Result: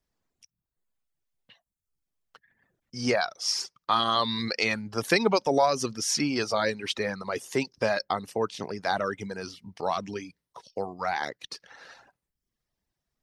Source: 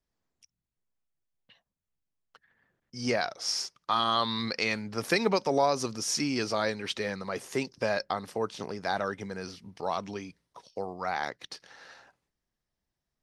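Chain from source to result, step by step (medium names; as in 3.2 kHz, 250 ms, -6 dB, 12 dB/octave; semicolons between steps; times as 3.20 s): reverb removal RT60 0.66 s; trim +3.5 dB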